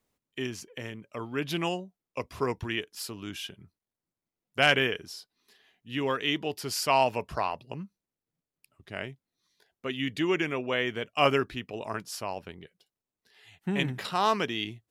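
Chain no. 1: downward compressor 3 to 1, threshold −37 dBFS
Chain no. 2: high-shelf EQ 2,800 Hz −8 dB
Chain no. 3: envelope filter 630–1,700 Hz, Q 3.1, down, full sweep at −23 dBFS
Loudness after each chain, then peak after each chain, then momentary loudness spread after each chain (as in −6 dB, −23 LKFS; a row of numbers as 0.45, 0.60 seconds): −39.5, −31.5, −37.0 LKFS; −20.0, −10.5, −17.0 dBFS; 10, 16, 21 LU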